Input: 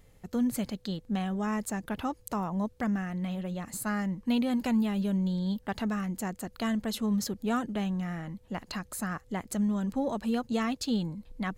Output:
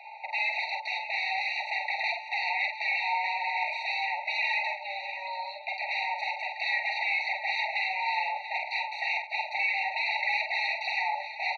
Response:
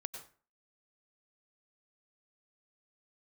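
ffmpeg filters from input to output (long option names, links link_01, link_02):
-filter_complex "[0:a]asettb=1/sr,asplit=3[link_01][link_02][link_03];[link_01]atrim=end=4.634[link_04];[link_02]atrim=start=4.63:end=5.89,asetpts=PTS-STARTPTS,afade=type=in:duration=0.004:curve=qsin,afade=type=out:start_time=1.256:duration=0.004:curve=qsin,acompressor=threshold=-39dB:ratio=4[link_05];[link_03]atrim=start=5.886[link_06];[link_04][link_05]acrossfade=duration=0.004:curve1=hsin:curve2=qsin[link_07];[link_07][link_06]acrossfade=duration=0.004:curve1=qsin:curve2=hsin,aeval=exprs='(mod(44.7*val(0)+1,2)-1)/44.7':channel_layout=same,asettb=1/sr,asplit=3[link_08][link_09][link_10];[link_08]atrim=end=0.604[link_11];[link_09]atrim=start=0.6:end=1.61,asetpts=PTS-STARTPTS,afade=type=in:duration=0.004:curve=qsin,afade=type=out:start_time=1.006:duration=0.004:curve=qsin,highshelf=frequency=2900:gain=8[link_12];[link_10]atrim=start=1.606[link_13];[link_11][link_12]acrossfade=duration=0.004:curve1=hsin:curve2=qsin[link_14];[link_14][link_13]acrossfade=duration=0.004:curve1=qsin:curve2=hsin,aeval=exprs='0.075*sin(PI/2*7.94*val(0)/0.075)':channel_layout=same,highpass=frequency=390:width_type=q:width=0.5412,highpass=frequency=390:width_type=q:width=1.307,lowpass=frequency=3400:width_type=q:width=0.5176,lowpass=frequency=3400:width_type=q:width=0.7071,lowpass=frequency=3400:width_type=q:width=1.932,afreqshift=380,aecho=1:1:46|589|686|887:0.562|0.2|0.251|0.106,acontrast=41,afftfilt=real='re*eq(mod(floor(b*sr/1024/930),2),0)':imag='im*eq(mod(floor(b*sr/1024/930),2),0)':win_size=1024:overlap=0.75,volume=-3.5dB"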